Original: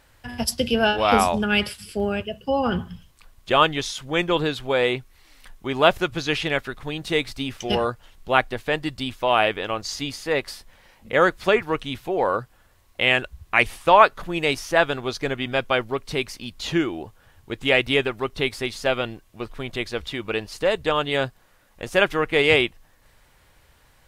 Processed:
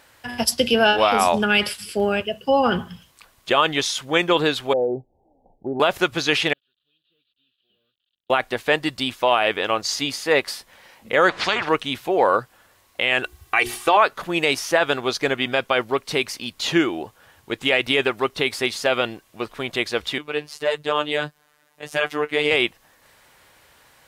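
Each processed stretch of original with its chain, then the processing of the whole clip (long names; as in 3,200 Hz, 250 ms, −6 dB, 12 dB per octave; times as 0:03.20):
0:04.73–0:05.80: Butterworth low-pass 840 Hz 96 dB per octave + downward compressor 2 to 1, threshold −25 dBFS
0:06.53–0:08.30: linear delta modulator 16 kbit/s, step −35.5 dBFS + inverse Chebyshev high-pass filter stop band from 2,300 Hz, stop band 50 dB
0:11.29–0:11.69: downward compressor 1.5 to 1, threshold −22 dBFS + head-to-tape spacing loss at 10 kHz 29 dB + every bin compressed towards the loudest bin 4 to 1
0:13.23–0:13.97: high-shelf EQ 8,700 Hz +5 dB + mains-hum notches 60/120/180/240/300/360/420 Hz + comb filter 2.6 ms, depth 63%
0:20.18–0:22.51: flanger 1.7 Hz, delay 5.8 ms, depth 5.1 ms, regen +51% + phases set to zero 149 Hz
whole clip: high-pass filter 320 Hz 6 dB per octave; brickwall limiter −12 dBFS; level +6 dB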